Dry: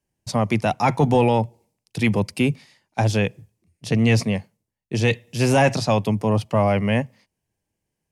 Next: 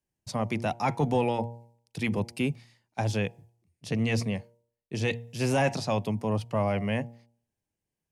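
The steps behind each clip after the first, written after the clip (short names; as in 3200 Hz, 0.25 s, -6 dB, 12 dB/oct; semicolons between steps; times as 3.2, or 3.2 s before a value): de-hum 117.4 Hz, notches 8; gain -8 dB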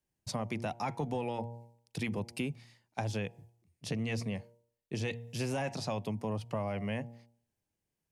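compressor 4:1, threshold -33 dBFS, peak gain reduction 11 dB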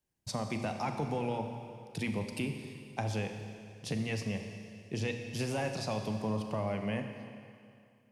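Schroeder reverb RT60 2.4 s, combs from 29 ms, DRR 5.5 dB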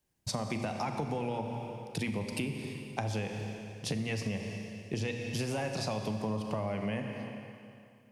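compressor, threshold -36 dBFS, peak gain reduction 7 dB; gain +5.5 dB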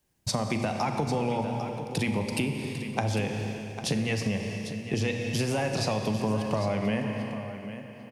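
echo 0.799 s -11.5 dB; gain +6 dB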